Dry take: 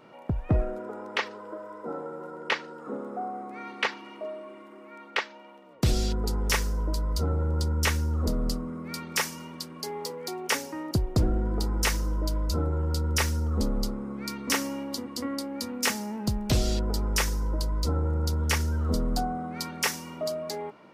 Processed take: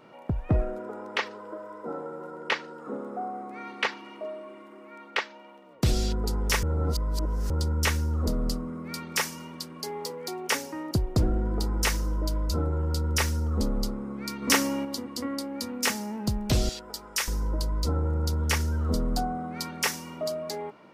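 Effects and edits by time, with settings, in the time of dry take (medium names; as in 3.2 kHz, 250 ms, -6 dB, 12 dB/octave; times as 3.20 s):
6.63–7.50 s: reverse
14.42–14.85 s: gain +4.5 dB
16.69–17.28 s: high-pass 1.4 kHz 6 dB/octave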